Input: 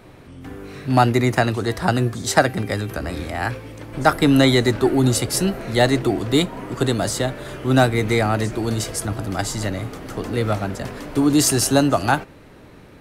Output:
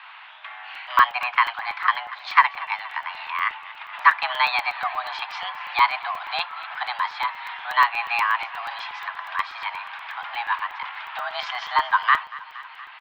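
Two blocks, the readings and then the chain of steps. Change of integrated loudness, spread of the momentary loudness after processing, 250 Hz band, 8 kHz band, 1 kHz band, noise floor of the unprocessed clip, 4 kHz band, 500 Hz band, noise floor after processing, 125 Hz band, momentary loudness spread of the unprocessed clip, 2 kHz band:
-4.0 dB, 16 LU, under -35 dB, under -25 dB, +2.5 dB, -44 dBFS, -4.0 dB, -21.5 dB, -44 dBFS, under -40 dB, 12 LU, +3.0 dB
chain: mistuned SSB +360 Hz 580–3200 Hz; on a send: feedback echo 0.235 s, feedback 55%, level -19 dB; on the sum: crackling interface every 0.12 s, samples 128, zero, from 0.75; mismatched tape noise reduction encoder only; gain +1.5 dB

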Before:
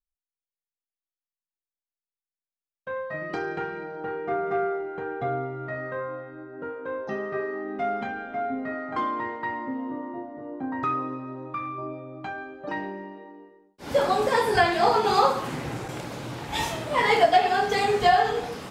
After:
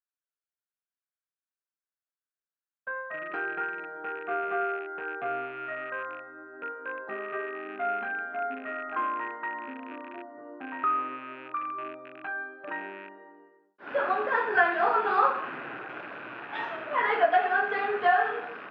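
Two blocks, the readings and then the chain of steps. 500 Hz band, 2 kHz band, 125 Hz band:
-6.0 dB, +1.0 dB, under -20 dB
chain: rattling part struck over -41 dBFS, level -28 dBFS; speaker cabinet 480–2300 Hz, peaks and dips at 510 Hz -7 dB, 850 Hz -7 dB, 1500 Hz +7 dB, 2200 Hz -7 dB

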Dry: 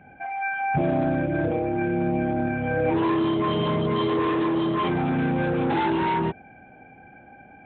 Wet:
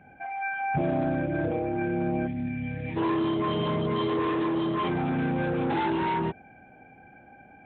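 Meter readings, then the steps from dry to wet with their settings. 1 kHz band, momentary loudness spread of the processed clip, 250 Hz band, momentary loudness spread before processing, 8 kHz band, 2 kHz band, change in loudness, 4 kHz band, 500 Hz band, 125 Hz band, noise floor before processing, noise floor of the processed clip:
-4.0 dB, 6 LU, -3.5 dB, 4 LU, n/a, -4.0 dB, -4.0 dB, -3.5 dB, -4.0 dB, -3.5 dB, -50 dBFS, -53 dBFS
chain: spectral gain 2.27–2.97, 300–1700 Hz -15 dB; gain -3.5 dB

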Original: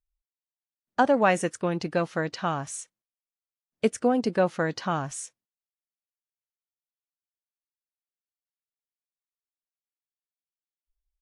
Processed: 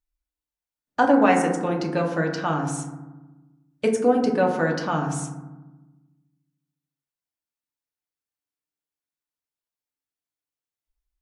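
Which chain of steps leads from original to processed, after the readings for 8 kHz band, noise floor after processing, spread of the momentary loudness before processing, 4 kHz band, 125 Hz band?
+1.0 dB, under -85 dBFS, 14 LU, +1.0 dB, +5.0 dB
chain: FDN reverb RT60 1.1 s, low-frequency decay 1.55×, high-frequency decay 0.3×, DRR 0.5 dB

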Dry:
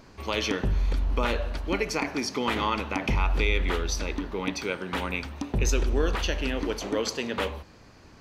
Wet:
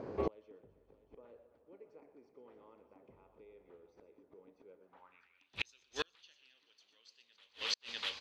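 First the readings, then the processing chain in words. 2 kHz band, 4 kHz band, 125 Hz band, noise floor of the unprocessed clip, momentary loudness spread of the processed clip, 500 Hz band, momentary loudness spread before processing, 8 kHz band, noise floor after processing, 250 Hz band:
-17.0 dB, -10.0 dB, -27.0 dB, -52 dBFS, 22 LU, -16.5 dB, 6 LU, -18.5 dB, -74 dBFS, -22.0 dB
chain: bell 110 Hz +8 dB 1.1 oct; on a send: tapped delay 0.121/0.268/0.432/0.647 s -13/-15/-19.5/-13.5 dB; on the sum: band-pass sweep 470 Hz -> 3800 Hz, 4.79–5.53; flipped gate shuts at -36 dBFS, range -40 dB; gain +14.5 dB

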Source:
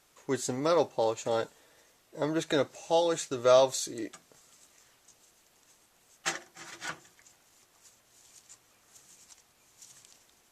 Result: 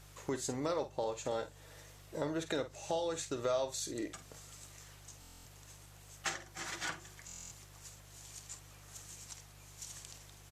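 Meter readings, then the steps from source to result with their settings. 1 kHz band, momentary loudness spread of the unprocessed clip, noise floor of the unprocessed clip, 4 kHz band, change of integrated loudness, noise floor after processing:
-9.0 dB, 17 LU, -66 dBFS, -6.5 dB, -10.5 dB, -57 dBFS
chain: compressor 3:1, threshold -43 dBFS, peak gain reduction 19 dB; buzz 50 Hz, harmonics 3, -63 dBFS -3 dB/oct; doubler 49 ms -11.5 dB; stuck buffer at 5.2/7.26, samples 1024, times 10; gain +5 dB

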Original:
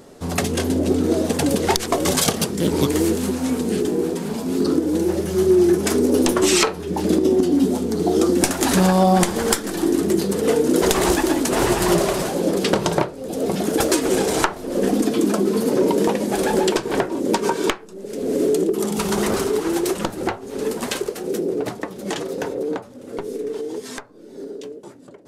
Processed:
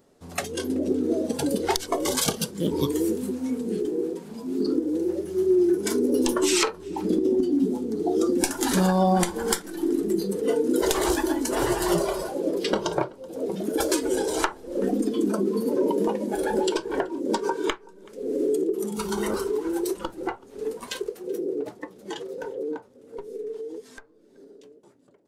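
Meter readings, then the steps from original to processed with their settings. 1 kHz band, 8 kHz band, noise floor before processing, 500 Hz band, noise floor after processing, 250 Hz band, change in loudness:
-6.0 dB, -6.5 dB, -39 dBFS, -5.5 dB, -52 dBFS, -5.5 dB, -5.5 dB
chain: spectral noise reduction 11 dB; outdoor echo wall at 65 m, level -24 dB; gain -5 dB

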